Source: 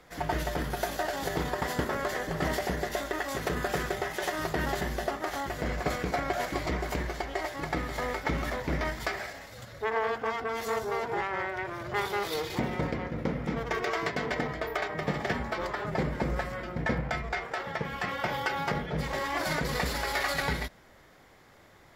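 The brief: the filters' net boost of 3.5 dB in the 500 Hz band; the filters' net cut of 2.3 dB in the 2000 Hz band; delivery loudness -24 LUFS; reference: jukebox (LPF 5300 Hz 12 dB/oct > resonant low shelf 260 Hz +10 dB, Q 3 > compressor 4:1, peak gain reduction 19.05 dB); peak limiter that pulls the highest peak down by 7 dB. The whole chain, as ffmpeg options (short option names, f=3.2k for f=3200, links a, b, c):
-af "equalizer=f=500:t=o:g=9,equalizer=f=2k:t=o:g=-3,alimiter=limit=-18.5dB:level=0:latency=1,lowpass=5.3k,lowshelf=f=260:t=q:w=3:g=10,acompressor=threshold=-36dB:ratio=4,volume=14dB"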